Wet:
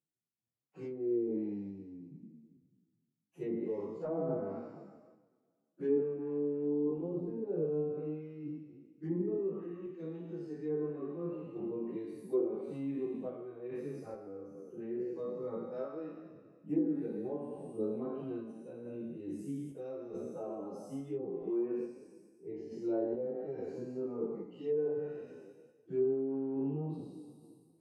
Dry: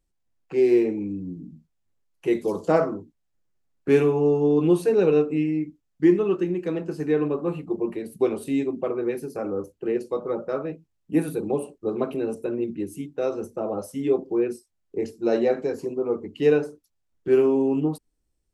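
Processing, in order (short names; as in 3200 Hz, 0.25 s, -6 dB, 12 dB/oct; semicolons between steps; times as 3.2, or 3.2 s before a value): spectral trails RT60 1.13 s; HPF 120 Hz 24 dB/oct; treble ducked by the level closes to 820 Hz, closed at -14.5 dBFS; EQ curve 160 Hz 0 dB, 490 Hz -6 dB, 2400 Hz -13 dB, 6300 Hz -5 dB; random-step tremolo; plain phase-vocoder stretch 1.5×; gain -5.5 dB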